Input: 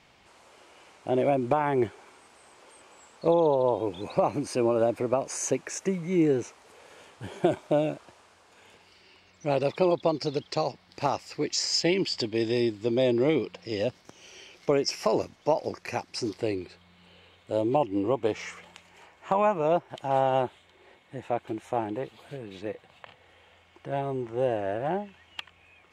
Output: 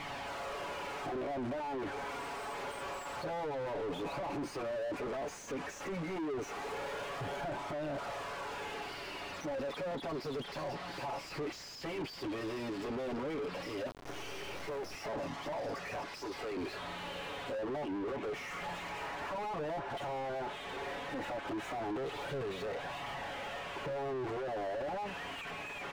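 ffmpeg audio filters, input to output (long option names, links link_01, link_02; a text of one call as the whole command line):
ffmpeg -i in.wav -filter_complex "[0:a]acompressor=threshold=-37dB:ratio=8,asoftclip=type=hard:threshold=-36dB,aecho=1:1:7.1:0.97,alimiter=level_in=17.5dB:limit=-24dB:level=0:latency=1:release=12,volume=-17.5dB,flanger=delay=0.9:depth=5.8:regen=-35:speed=0.13:shape=triangular,asettb=1/sr,asplit=3[link_01][link_02][link_03];[link_01]atrim=end=13.874[link_04];[link_02]atrim=start=13.87:end=14.95,asetpts=PTS-STARTPTS,afade=type=in:duration=0.004:curve=qsin,afade=type=out:start_time=1.076:duration=0.004:curve=qsin,acrusher=bits=7:dc=4:mix=0:aa=0.000001[link_05];[link_03]atrim=start=14.946[link_06];[link_04][link_05]acrossfade=duration=0.004:curve1=hsin:curve2=qsin[link_07];[link_07][link_06]acrossfade=duration=0.004:curve1=qsin:curve2=hsin,asettb=1/sr,asplit=3[link_08][link_09][link_10];[link_08]atrim=end=16.094[link_11];[link_09]atrim=start=16.09:end=16.57,asetpts=PTS-STARTPTS,afade=type=in:duration=0.004:curve=qsin,afade=type=out:start_time=0.476:duration=0.004:curve=qsin,highpass=610[link_12];[link_10]atrim=start=16.566[link_13];[link_11][link_12]acrossfade=duration=0.004:curve1=hsin:curve2=qsin[link_14];[link_14][link_13]acrossfade=duration=0.004:curve1=qsin:curve2=hsin,asplit=2[link_15][link_16];[link_16]highpass=frequency=720:poles=1,volume=36dB,asoftclip=type=tanh:threshold=-38.5dB[link_17];[link_15][link_17]amix=inputs=2:normalize=0,lowpass=frequency=1000:poles=1,volume=-6dB,volume=8.5dB" out.wav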